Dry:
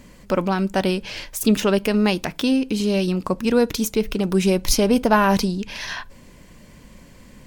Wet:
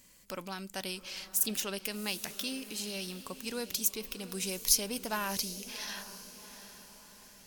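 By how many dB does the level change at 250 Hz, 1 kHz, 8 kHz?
-22.0, -18.0, -2.5 dB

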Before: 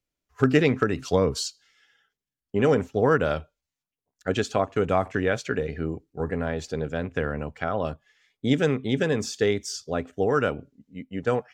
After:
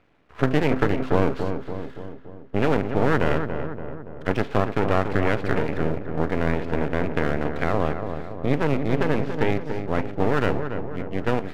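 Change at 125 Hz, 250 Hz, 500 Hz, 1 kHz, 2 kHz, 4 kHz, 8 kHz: +3.5 dB, +2.0 dB, 0.0 dB, +3.0 dB, +2.0 dB, -3.5 dB, under -10 dB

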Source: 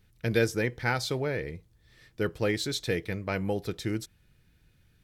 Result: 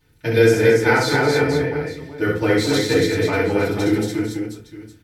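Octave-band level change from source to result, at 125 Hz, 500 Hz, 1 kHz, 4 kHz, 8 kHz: +10.0, +14.0, +13.0, +9.5, +10.0 dB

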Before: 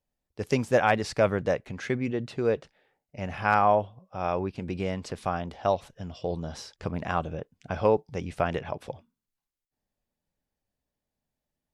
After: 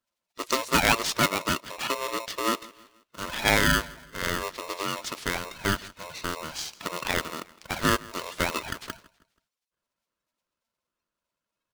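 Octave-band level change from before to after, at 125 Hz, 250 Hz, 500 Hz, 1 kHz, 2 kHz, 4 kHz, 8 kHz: -3.0, -0.5, -6.0, -1.0, +6.5, +14.0, +15.0 dB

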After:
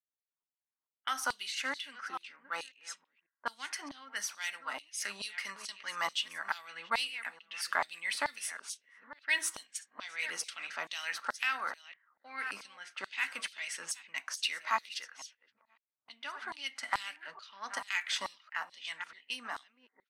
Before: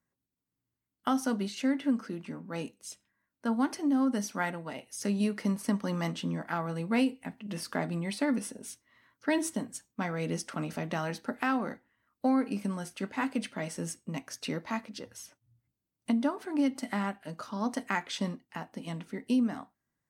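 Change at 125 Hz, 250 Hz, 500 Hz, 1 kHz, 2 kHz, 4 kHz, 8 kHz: under -30 dB, -28.0 dB, -13.0 dB, -2.0 dB, +4.0 dB, +5.5 dB, +2.0 dB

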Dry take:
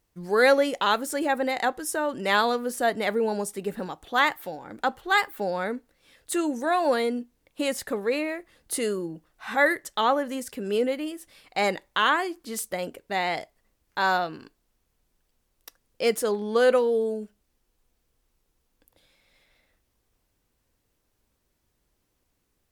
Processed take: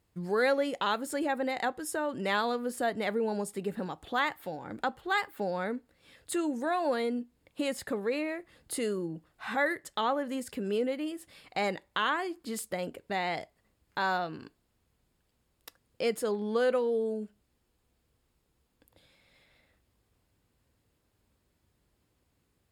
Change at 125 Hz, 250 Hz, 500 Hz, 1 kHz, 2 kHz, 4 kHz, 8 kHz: -1.5, -3.5, -6.0, -6.5, -7.0, -7.0, -7.0 dB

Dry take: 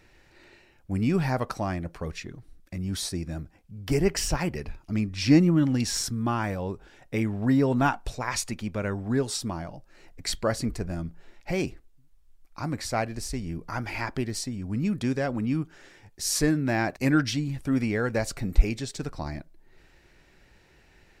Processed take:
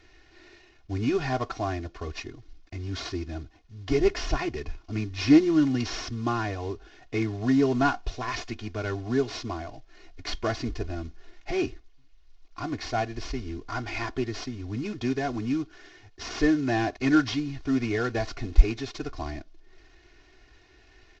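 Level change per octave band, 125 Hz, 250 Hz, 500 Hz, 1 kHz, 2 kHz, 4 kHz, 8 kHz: -3.5, 0.0, +1.0, +0.5, 0.0, -2.0, -10.5 dB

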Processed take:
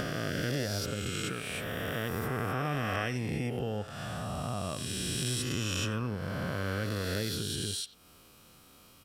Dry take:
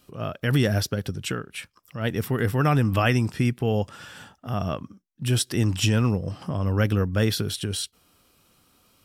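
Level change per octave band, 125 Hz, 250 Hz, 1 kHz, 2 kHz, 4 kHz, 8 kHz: -11.0, -9.5, -6.5, -5.0, -4.5, -3.5 dB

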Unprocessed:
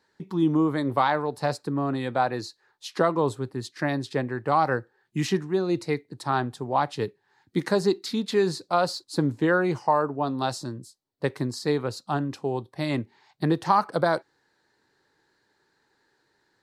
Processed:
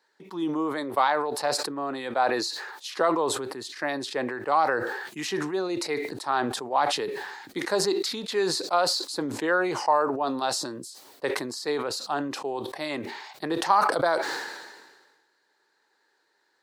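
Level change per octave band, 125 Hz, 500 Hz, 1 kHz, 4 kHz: -14.0, -1.0, +0.5, +6.0 dB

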